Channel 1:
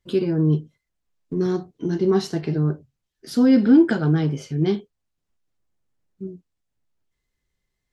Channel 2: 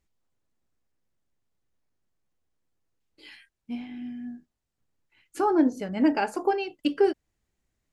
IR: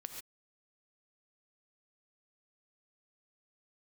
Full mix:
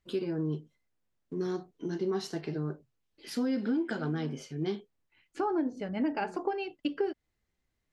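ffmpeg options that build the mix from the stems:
-filter_complex "[0:a]highpass=f=320:p=1,volume=0.473,asplit=2[s0][s1];[1:a]lowpass=4400,volume=0.708[s2];[s1]apad=whole_len=349408[s3];[s2][s3]sidechaincompress=threshold=0.0251:ratio=8:attack=16:release=231[s4];[s0][s4]amix=inputs=2:normalize=0,acompressor=threshold=0.0447:ratio=5"

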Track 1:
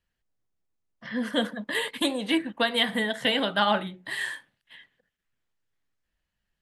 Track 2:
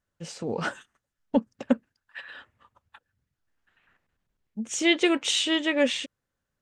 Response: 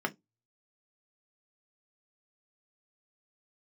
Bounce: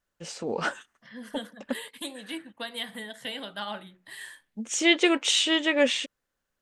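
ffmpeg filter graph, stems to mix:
-filter_complex "[0:a]highshelf=f=5100:g=11.5,volume=0.224,asplit=2[s0][s1];[1:a]equalizer=f=99:t=o:w=2:g=-11,volume=1.26[s2];[s1]apad=whole_len=291633[s3];[s2][s3]sidechaincompress=threshold=0.00398:ratio=8:attack=16:release=340[s4];[s0][s4]amix=inputs=2:normalize=0"

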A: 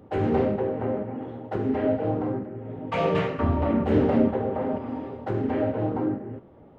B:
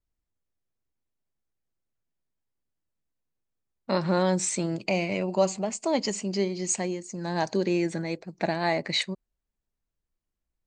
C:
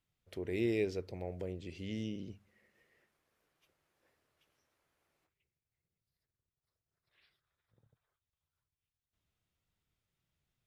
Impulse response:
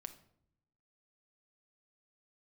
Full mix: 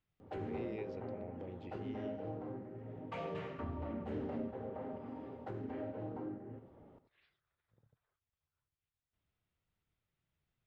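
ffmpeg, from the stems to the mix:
-filter_complex "[0:a]adelay=200,volume=0.376,asplit=2[s0][s1];[s1]volume=0.237[s2];[2:a]lowpass=3100,volume=0.944[s3];[s2]aecho=0:1:90:1[s4];[s0][s3][s4]amix=inputs=3:normalize=0,acompressor=threshold=0.00447:ratio=2"

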